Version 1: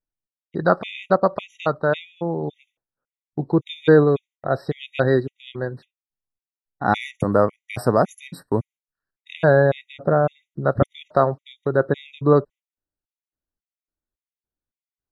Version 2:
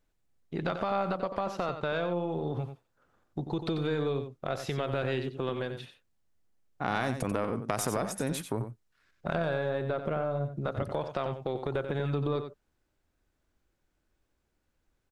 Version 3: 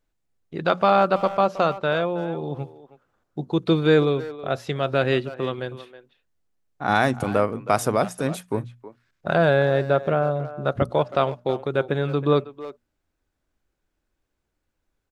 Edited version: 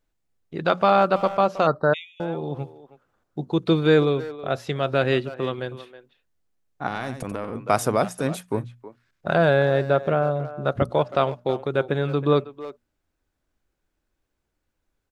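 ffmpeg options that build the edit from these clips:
ffmpeg -i take0.wav -i take1.wav -i take2.wav -filter_complex "[2:a]asplit=3[link_01][link_02][link_03];[link_01]atrim=end=1.672[link_04];[0:a]atrim=start=1.668:end=2.202[link_05];[link_02]atrim=start=2.198:end=6.882[link_06];[1:a]atrim=start=6.878:end=7.552[link_07];[link_03]atrim=start=7.548[link_08];[link_04][link_05]acrossfade=duration=0.004:curve1=hsin:curve2=hsin[link_09];[link_09][link_06]acrossfade=duration=0.004:curve1=hsin:curve2=hsin[link_10];[link_10][link_07]acrossfade=duration=0.004:curve1=hsin:curve2=hsin[link_11];[link_11][link_08]acrossfade=duration=0.004:curve1=hsin:curve2=hsin" out.wav

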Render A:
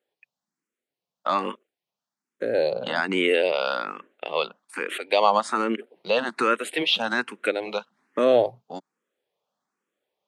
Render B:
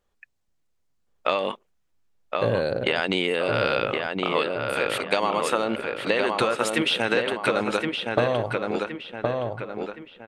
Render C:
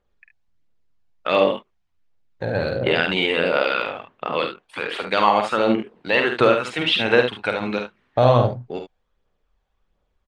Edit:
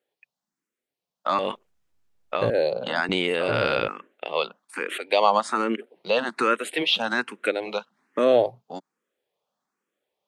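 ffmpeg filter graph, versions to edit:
ffmpeg -i take0.wav -i take1.wav -filter_complex "[1:a]asplit=2[link_01][link_02];[0:a]asplit=3[link_03][link_04][link_05];[link_03]atrim=end=1.392[link_06];[link_01]atrim=start=1.388:end=2.502[link_07];[link_04]atrim=start=2.498:end=3.092[link_08];[link_02]atrim=start=3.088:end=3.882[link_09];[link_05]atrim=start=3.878[link_10];[link_06][link_07]acrossfade=duration=0.004:curve1=hsin:curve2=hsin[link_11];[link_11][link_08]acrossfade=duration=0.004:curve1=hsin:curve2=hsin[link_12];[link_12][link_09]acrossfade=duration=0.004:curve1=hsin:curve2=hsin[link_13];[link_13][link_10]acrossfade=duration=0.004:curve1=hsin:curve2=hsin" out.wav

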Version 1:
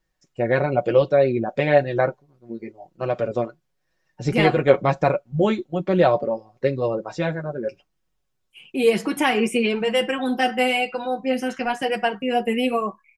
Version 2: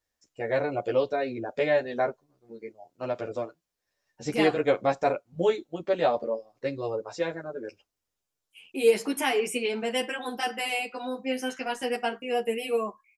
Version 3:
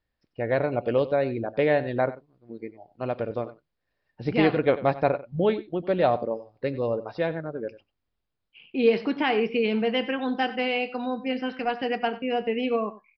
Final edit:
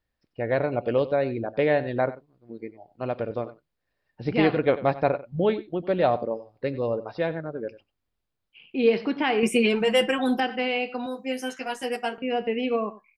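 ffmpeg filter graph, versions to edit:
ffmpeg -i take0.wav -i take1.wav -i take2.wav -filter_complex "[2:a]asplit=3[link_01][link_02][link_03];[link_01]atrim=end=9.432[link_04];[0:a]atrim=start=9.428:end=10.402[link_05];[link_02]atrim=start=10.398:end=11.062[link_06];[1:a]atrim=start=11.058:end=12.182[link_07];[link_03]atrim=start=12.178[link_08];[link_04][link_05]acrossfade=duration=0.004:curve1=hsin:curve2=hsin[link_09];[link_09][link_06]acrossfade=duration=0.004:curve1=hsin:curve2=hsin[link_10];[link_10][link_07]acrossfade=duration=0.004:curve1=hsin:curve2=hsin[link_11];[link_11][link_08]acrossfade=duration=0.004:curve1=hsin:curve2=hsin" out.wav

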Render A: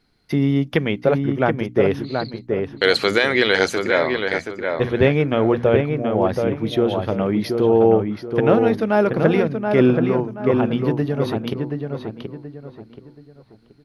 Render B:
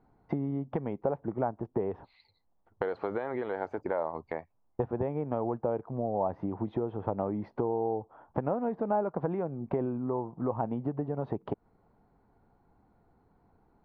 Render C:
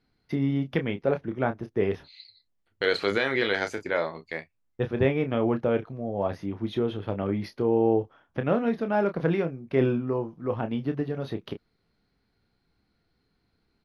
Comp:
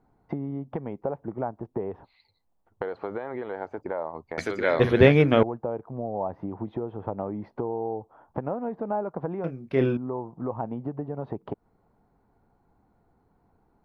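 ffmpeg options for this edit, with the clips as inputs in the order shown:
ffmpeg -i take0.wav -i take1.wav -i take2.wav -filter_complex "[1:a]asplit=3[link_01][link_02][link_03];[link_01]atrim=end=4.382[link_04];[0:a]atrim=start=4.378:end=5.432[link_05];[link_02]atrim=start=5.428:end=9.442[link_06];[2:a]atrim=start=9.438:end=9.972[link_07];[link_03]atrim=start=9.968[link_08];[link_04][link_05]acrossfade=duration=0.004:curve1=hsin:curve2=hsin[link_09];[link_09][link_06]acrossfade=duration=0.004:curve1=hsin:curve2=hsin[link_10];[link_10][link_07]acrossfade=duration=0.004:curve1=hsin:curve2=hsin[link_11];[link_11][link_08]acrossfade=duration=0.004:curve1=hsin:curve2=hsin" out.wav

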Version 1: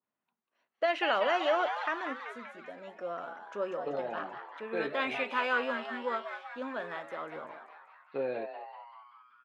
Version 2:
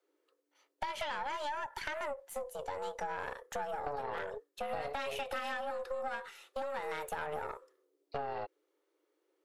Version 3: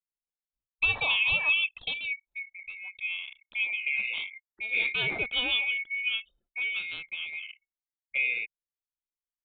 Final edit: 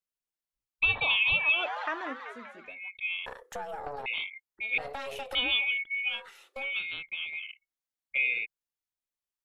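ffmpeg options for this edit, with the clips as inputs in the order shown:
ffmpeg -i take0.wav -i take1.wav -i take2.wav -filter_complex "[1:a]asplit=3[link_01][link_02][link_03];[2:a]asplit=5[link_04][link_05][link_06][link_07][link_08];[link_04]atrim=end=1.74[link_09];[0:a]atrim=start=1.5:end=2.81[link_10];[link_05]atrim=start=2.57:end=3.262[link_11];[link_01]atrim=start=3.258:end=4.062[link_12];[link_06]atrim=start=4.058:end=4.782[link_13];[link_02]atrim=start=4.778:end=5.352[link_14];[link_07]atrim=start=5.348:end=6.28[link_15];[link_03]atrim=start=6.04:end=6.75[link_16];[link_08]atrim=start=6.51[link_17];[link_09][link_10]acrossfade=duration=0.24:curve1=tri:curve2=tri[link_18];[link_18][link_11]acrossfade=duration=0.24:curve1=tri:curve2=tri[link_19];[link_19][link_12]acrossfade=duration=0.004:curve1=hsin:curve2=hsin[link_20];[link_20][link_13]acrossfade=duration=0.004:curve1=hsin:curve2=hsin[link_21];[link_21][link_14]acrossfade=duration=0.004:curve1=hsin:curve2=hsin[link_22];[link_22][link_15]acrossfade=duration=0.004:curve1=hsin:curve2=hsin[link_23];[link_23][link_16]acrossfade=duration=0.24:curve1=tri:curve2=tri[link_24];[link_24][link_17]acrossfade=duration=0.24:curve1=tri:curve2=tri" out.wav

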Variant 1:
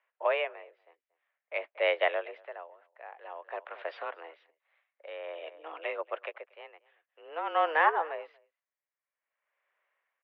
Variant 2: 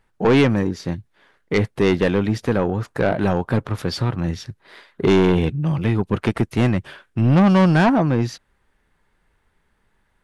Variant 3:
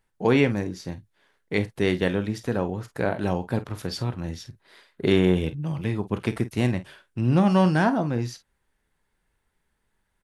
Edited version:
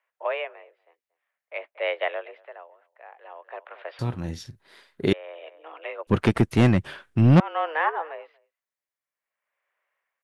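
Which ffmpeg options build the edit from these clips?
ffmpeg -i take0.wav -i take1.wav -i take2.wav -filter_complex "[0:a]asplit=3[link_01][link_02][link_03];[link_01]atrim=end=3.992[link_04];[2:a]atrim=start=3.988:end=5.132[link_05];[link_02]atrim=start=5.128:end=6.072[link_06];[1:a]atrim=start=6.068:end=7.402[link_07];[link_03]atrim=start=7.398[link_08];[link_04][link_05]acrossfade=duration=0.004:curve1=hsin:curve2=hsin[link_09];[link_09][link_06]acrossfade=duration=0.004:curve1=hsin:curve2=hsin[link_10];[link_10][link_07]acrossfade=duration=0.004:curve1=hsin:curve2=hsin[link_11];[link_11][link_08]acrossfade=duration=0.004:curve1=hsin:curve2=hsin" out.wav

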